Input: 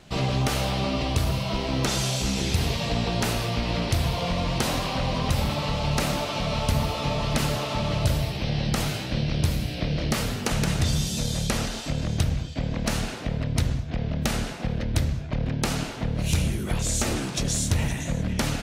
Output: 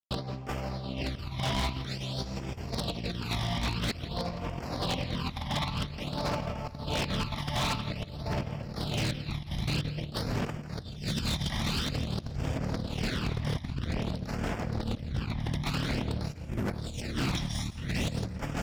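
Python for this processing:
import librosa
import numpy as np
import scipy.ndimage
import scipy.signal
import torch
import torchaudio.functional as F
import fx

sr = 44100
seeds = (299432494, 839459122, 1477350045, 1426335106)

y = scipy.signal.sosfilt(scipy.signal.butter(2, 45.0, 'highpass', fs=sr, output='sos'), x)
y = fx.echo_feedback(y, sr, ms=573, feedback_pct=56, wet_db=-8.5)
y = np.sign(y) * np.maximum(np.abs(y) - 10.0 ** (-39.0 / 20.0), 0.0)
y = fx.phaser_stages(y, sr, stages=12, low_hz=440.0, high_hz=4100.0, hz=0.5, feedback_pct=5)
y = fx.over_compress(y, sr, threshold_db=-32.0, ratio=-0.5)
y = fx.high_shelf_res(y, sr, hz=6000.0, db=-9.0, q=1.5)
y = fx.notch(y, sr, hz=6200.0, q=9.6)
y = y + 10.0 ** (-16.0 / 20.0) * np.pad(y, (int(168 * sr / 1000.0), 0))[:len(y)]
y = 10.0 ** (-24.0 / 20.0) * (np.abs((y / 10.0 ** (-24.0 / 20.0) + 3.0) % 4.0 - 2.0) - 1.0)
y = y * librosa.db_to_amplitude(1.0)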